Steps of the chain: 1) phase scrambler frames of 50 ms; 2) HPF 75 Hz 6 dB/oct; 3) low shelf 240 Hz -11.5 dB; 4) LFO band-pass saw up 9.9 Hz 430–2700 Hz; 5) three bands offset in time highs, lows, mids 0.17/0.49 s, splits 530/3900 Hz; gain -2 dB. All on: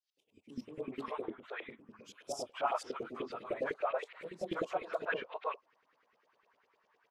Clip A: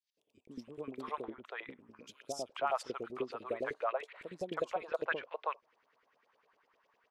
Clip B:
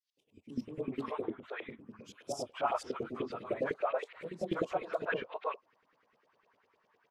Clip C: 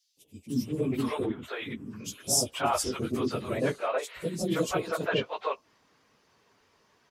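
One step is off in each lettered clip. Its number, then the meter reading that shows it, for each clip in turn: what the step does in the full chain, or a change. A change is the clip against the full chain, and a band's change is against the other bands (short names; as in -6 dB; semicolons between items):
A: 1, 250 Hz band -1.5 dB; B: 3, 125 Hz band +7.0 dB; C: 4, 8 kHz band +11.5 dB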